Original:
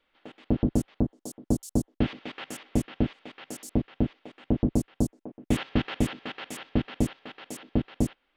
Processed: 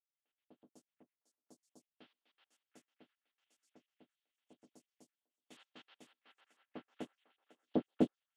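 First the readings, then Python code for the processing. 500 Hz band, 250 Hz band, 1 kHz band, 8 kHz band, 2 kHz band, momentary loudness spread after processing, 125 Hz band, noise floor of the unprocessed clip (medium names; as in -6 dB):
-12.5 dB, -16.5 dB, -15.5 dB, -28.5 dB, -24.0 dB, 24 LU, -26.0 dB, -75 dBFS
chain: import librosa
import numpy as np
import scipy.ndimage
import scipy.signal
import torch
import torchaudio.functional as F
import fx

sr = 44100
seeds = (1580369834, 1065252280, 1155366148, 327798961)

p1 = scipy.signal.sosfilt(scipy.signal.butter(2, 170.0, 'highpass', fs=sr, output='sos'), x)
p2 = fx.dynamic_eq(p1, sr, hz=2200.0, q=1.3, threshold_db=-54.0, ratio=4.0, max_db=-8)
p3 = fx.filter_sweep_bandpass(p2, sr, from_hz=3100.0, to_hz=440.0, start_s=5.89, end_s=8.25, q=0.78)
p4 = p3 + fx.echo_stepped(p3, sr, ms=710, hz=1700.0, octaves=0.7, feedback_pct=70, wet_db=-3, dry=0)
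p5 = fx.upward_expand(p4, sr, threshold_db=-53.0, expansion=2.5)
y = p5 * 10.0 ** (2.5 / 20.0)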